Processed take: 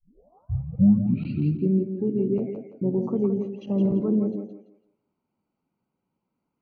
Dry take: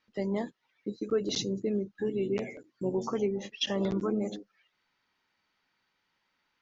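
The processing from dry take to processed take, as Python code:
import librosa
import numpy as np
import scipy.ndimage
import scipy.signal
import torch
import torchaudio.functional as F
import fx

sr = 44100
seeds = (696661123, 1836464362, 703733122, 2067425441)

p1 = fx.tape_start_head(x, sr, length_s=1.9)
p2 = scipy.signal.lfilter(np.full(25, 1.0 / 25), 1.0, p1)
p3 = fx.peak_eq(p2, sr, hz=180.0, db=13.5, octaves=2.4)
p4 = p3 + fx.echo_thinned(p3, sr, ms=168, feedback_pct=30, hz=290.0, wet_db=-5, dry=0)
y = p4 * 10.0 ** (-3.0 / 20.0)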